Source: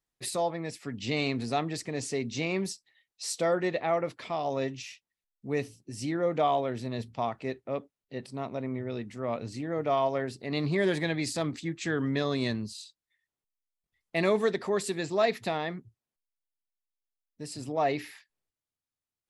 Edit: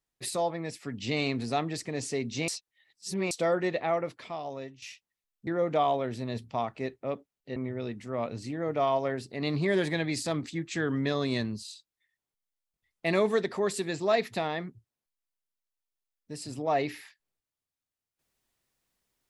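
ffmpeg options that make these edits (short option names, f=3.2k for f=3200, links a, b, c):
-filter_complex "[0:a]asplit=6[a][b][c][d][e][f];[a]atrim=end=2.482[g];[b]atrim=start=2.478:end=3.312,asetpts=PTS-STARTPTS,areverse[h];[c]atrim=start=3.308:end=4.82,asetpts=PTS-STARTPTS,afade=t=out:st=0.532:d=0.98:silence=0.177828[i];[d]atrim=start=4.82:end=5.472,asetpts=PTS-STARTPTS,afade=t=in:d=0.004:c=hsin:silence=0.177828[j];[e]atrim=start=6.108:end=8.202[k];[f]atrim=start=8.658[l];[g][h]acrossfade=d=0.004:c1=hsin:c2=hsin[m];[i][j]concat=n=2:v=0:a=1[n];[m][n]acrossfade=d=0.004:c1=hsin:c2=hsin[o];[o][k]acrossfade=d=0.004:c1=hsin:c2=hsin[p];[p][l]acrossfade=d=0.004:c1=hsin:c2=hsin"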